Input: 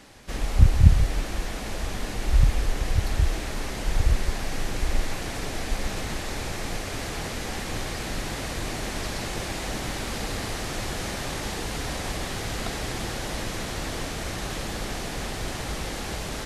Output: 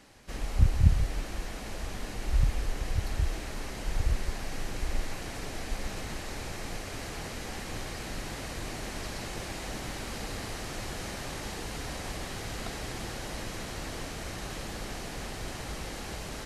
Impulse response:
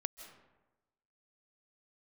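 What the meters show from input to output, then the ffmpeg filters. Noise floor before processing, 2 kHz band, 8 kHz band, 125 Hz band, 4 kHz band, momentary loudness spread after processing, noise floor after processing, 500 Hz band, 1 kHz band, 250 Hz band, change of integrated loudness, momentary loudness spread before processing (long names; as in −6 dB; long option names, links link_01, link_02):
−33 dBFS, −6.5 dB, −6.5 dB, −6.5 dB, −7.0 dB, 8 LU, −39 dBFS, −6.5 dB, −6.5 dB, −6.5 dB, −6.5 dB, 8 LU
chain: -af "bandreject=frequency=3500:width=25,volume=-6.5dB"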